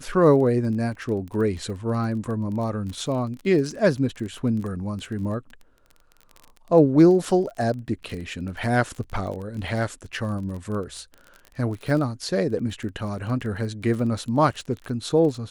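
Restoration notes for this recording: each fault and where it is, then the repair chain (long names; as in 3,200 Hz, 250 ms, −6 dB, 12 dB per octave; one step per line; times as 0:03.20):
surface crackle 23 per second −31 dBFS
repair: click removal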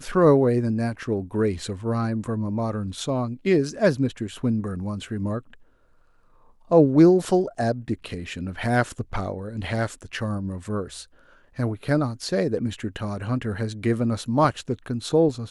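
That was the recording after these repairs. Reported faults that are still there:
none of them is left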